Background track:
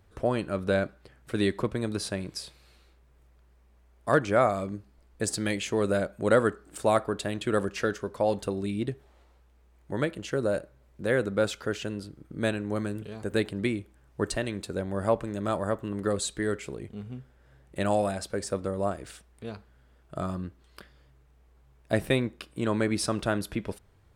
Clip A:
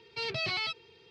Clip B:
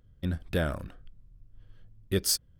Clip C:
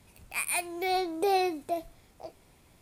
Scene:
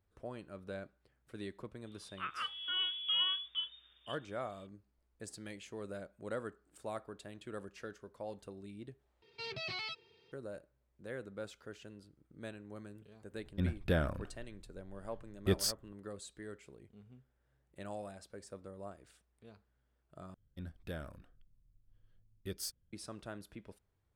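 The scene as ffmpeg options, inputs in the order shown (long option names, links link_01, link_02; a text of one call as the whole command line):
ffmpeg -i bed.wav -i cue0.wav -i cue1.wav -i cue2.wav -filter_complex "[2:a]asplit=2[link_01][link_02];[0:a]volume=-18.5dB[link_03];[3:a]lowpass=frequency=3100:width_type=q:width=0.5098,lowpass=frequency=3100:width_type=q:width=0.6013,lowpass=frequency=3100:width_type=q:width=0.9,lowpass=frequency=3100:width_type=q:width=2.563,afreqshift=-3700[link_04];[link_01]highshelf=frequency=5400:gain=-8.5[link_05];[link_03]asplit=3[link_06][link_07][link_08];[link_06]atrim=end=9.224[link_09];[1:a]atrim=end=1.1,asetpts=PTS-STARTPTS,volume=-8.5dB[link_10];[link_07]atrim=start=10.316:end=20.344[link_11];[link_02]atrim=end=2.59,asetpts=PTS-STARTPTS,volume=-15dB[link_12];[link_08]atrim=start=22.926[link_13];[link_04]atrim=end=2.81,asetpts=PTS-STARTPTS,volume=-7dB,afade=type=in:duration=0.004:curve=hsin,afade=type=out:start_time=2.806:duration=0.004:curve=hsin,adelay=1860[link_14];[link_05]atrim=end=2.59,asetpts=PTS-STARTPTS,volume=-3dB,afade=type=in:duration=0.004:curve=hsin,afade=type=out:start_time=2.586:duration=0.004:curve=hsin,adelay=13350[link_15];[link_09][link_10]acrossfade=duration=0.004:curve1=hsin:curve2=hsin[link_16];[link_16][link_11]acrossfade=duration=0.004:curve1=hsin:curve2=hsin[link_17];[link_17][link_12]acrossfade=duration=0.004:curve1=hsin:curve2=hsin[link_18];[link_18][link_13]acrossfade=duration=0.004:curve1=hsin:curve2=hsin[link_19];[link_19][link_14][link_15]amix=inputs=3:normalize=0" out.wav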